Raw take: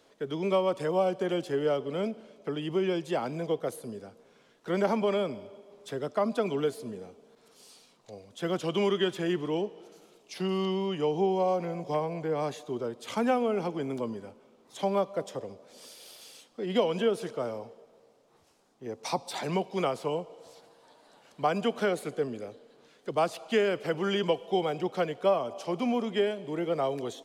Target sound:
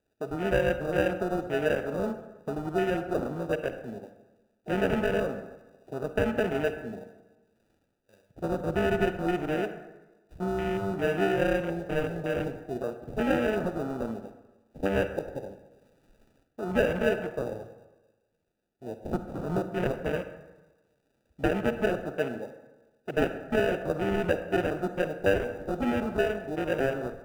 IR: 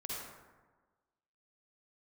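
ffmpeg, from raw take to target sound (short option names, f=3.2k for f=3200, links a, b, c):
-filter_complex "[0:a]acrusher=samples=41:mix=1:aa=0.000001,afwtdn=0.0178,asplit=2[a][b];[1:a]atrim=start_sample=2205,asetrate=52920,aresample=44100[c];[b][c]afir=irnorm=-1:irlink=0,volume=-6dB[d];[a][d]amix=inputs=2:normalize=0,volume=-1dB"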